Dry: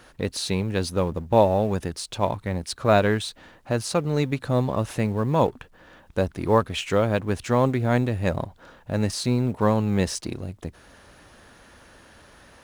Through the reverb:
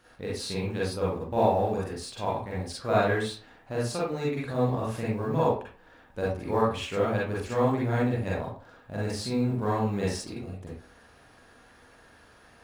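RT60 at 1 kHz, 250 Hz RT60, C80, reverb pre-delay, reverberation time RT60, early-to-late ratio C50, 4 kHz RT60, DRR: 0.40 s, 0.40 s, 6.5 dB, 39 ms, 0.40 s, 0.0 dB, 0.25 s, -7.0 dB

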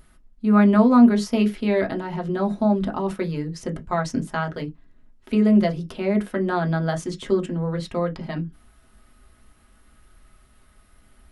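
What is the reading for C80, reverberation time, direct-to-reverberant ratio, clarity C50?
35.5 dB, not exponential, 1.0 dB, 24.0 dB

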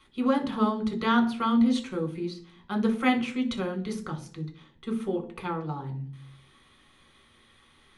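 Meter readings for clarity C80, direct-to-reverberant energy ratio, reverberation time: 18.0 dB, 2.0 dB, 0.55 s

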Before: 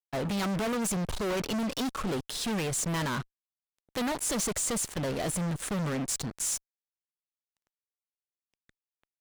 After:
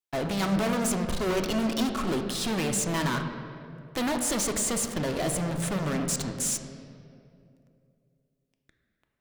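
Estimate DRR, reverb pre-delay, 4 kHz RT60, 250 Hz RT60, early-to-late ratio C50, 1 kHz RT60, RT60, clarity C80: 5.0 dB, 3 ms, 1.5 s, 2.9 s, 7.0 dB, 2.1 s, 2.5 s, 7.5 dB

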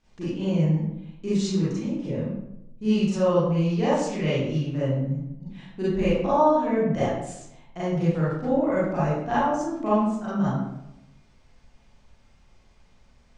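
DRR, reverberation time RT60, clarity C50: -11.0 dB, 0.85 s, -2.5 dB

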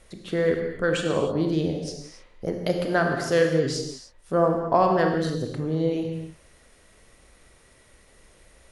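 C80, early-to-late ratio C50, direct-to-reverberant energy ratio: 5.5 dB, 4.0 dB, 2.5 dB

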